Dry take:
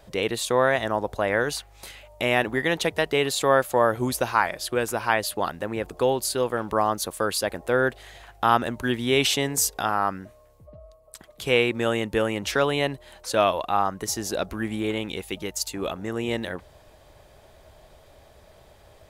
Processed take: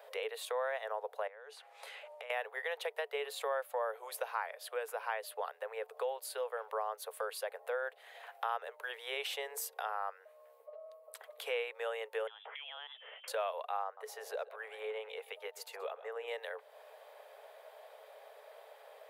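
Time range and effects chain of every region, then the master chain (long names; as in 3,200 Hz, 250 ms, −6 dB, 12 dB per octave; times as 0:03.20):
0:01.27–0:02.30: low-pass filter 8,900 Hz + downward compressor 8 to 1, threshold −39 dBFS
0:12.27–0:13.28: high-pass filter 290 Hz + downward compressor 10 to 1, threshold −35 dBFS + voice inversion scrambler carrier 3,700 Hz
0:13.84–0:16.28: high-shelf EQ 3,300 Hz −9 dB + single-tap delay 129 ms −17 dB
whole clip: Chebyshev high-pass filter 430 Hz, order 8; parametric band 6,300 Hz −12.5 dB 1.4 octaves; downward compressor 2 to 1, threshold −47 dBFS; level +1 dB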